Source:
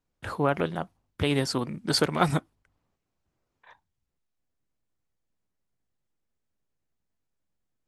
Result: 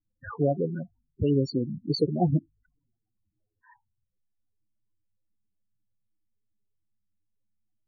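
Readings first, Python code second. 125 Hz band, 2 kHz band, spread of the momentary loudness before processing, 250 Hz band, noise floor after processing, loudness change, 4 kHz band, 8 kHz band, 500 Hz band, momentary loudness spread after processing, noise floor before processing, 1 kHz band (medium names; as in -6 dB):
+2.5 dB, under -10 dB, 11 LU, +2.0 dB, -82 dBFS, 0.0 dB, -8.0 dB, under -15 dB, +0.5 dB, 11 LU, -81 dBFS, -7.0 dB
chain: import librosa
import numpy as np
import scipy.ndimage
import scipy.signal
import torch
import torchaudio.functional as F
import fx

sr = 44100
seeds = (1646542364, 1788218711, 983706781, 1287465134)

y = fx.env_flanger(x, sr, rest_ms=9.7, full_db=-23.5)
y = fx.spec_topn(y, sr, count=8)
y = y * librosa.db_to_amplitude(3.5)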